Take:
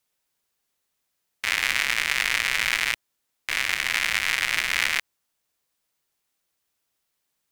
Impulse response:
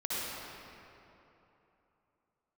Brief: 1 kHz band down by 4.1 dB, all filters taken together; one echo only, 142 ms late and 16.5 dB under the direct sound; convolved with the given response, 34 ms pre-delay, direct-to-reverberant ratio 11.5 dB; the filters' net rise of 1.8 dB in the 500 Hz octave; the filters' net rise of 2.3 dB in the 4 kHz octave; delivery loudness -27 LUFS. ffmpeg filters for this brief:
-filter_complex "[0:a]equalizer=f=500:t=o:g=4.5,equalizer=f=1000:t=o:g=-7,equalizer=f=4000:t=o:g=3.5,aecho=1:1:142:0.15,asplit=2[s0][s1];[1:a]atrim=start_sample=2205,adelay=34[s2];[s1][s2]afir=irnorm=-1:irlink=0,volume=0.126[s3];[s0][s3]amix=inputs=2:normalize=0,volume=0.596"

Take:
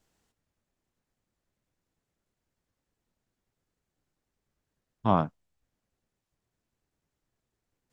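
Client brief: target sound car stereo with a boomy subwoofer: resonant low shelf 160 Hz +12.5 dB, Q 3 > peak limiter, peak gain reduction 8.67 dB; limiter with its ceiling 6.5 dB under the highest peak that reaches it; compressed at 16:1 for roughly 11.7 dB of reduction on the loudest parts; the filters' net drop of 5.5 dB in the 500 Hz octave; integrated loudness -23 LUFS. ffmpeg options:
-af "equalizer=f=500:t=o:g=-6.5,acompressor=threshold=0.0316:ratio=16,alimiter=level_in=1.26:limit=0.0631:level=0:latency=1,volume=0.794,lowshelf=f=160:t=q:w=3:g=12.5,volume=5.01,alimiter=limit=0.299:level=0:latency=1"

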